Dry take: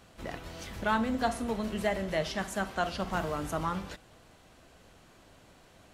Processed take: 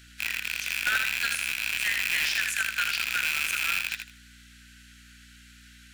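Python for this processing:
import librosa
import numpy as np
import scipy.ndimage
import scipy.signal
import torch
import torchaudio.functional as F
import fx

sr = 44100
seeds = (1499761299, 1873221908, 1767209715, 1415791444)

p1 = fx.rattle_buzz(x, sr, strikes_db=-43.0, level_db=-19.0)
p2 = scipy.signal.sosfilt(scipy.signal.butter(16, 1400.0, 'highpass', fs=sr, output='sos'), p1)
p3 = (np.mod(10.0 ** (27.0 / 20.0) * p2 + 1.0, 2.0) - 1.0) / 10.0 ** (27.0 / 20.0)
p4 = p2 + F.gain(torch.from_numpy(p3), -3.5).numpy()
p5 = fx.add_hum(p4, sr, base_hz=60, snr_db=23)
p6 = fx.echo_feedback(p5, sr, ms=79, feedback_pct=21, wet_db=-6)
y = F.gain(torch.from_numpy(p6), 4.0).numpy()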